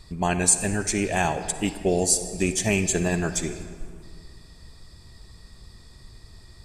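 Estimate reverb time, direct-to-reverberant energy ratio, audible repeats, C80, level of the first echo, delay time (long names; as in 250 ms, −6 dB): 2.0 s, 10.0 dB, no echo audible, 11.5 dB, no echo audible, no echo audible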